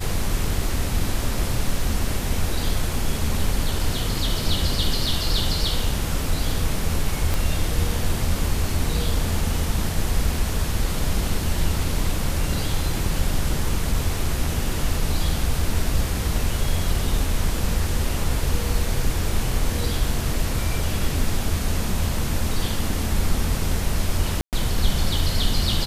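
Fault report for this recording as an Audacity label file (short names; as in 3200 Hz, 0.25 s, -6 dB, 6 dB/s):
7.340000	7.340000	pop
24.410000	24.530000	gap 0.118 s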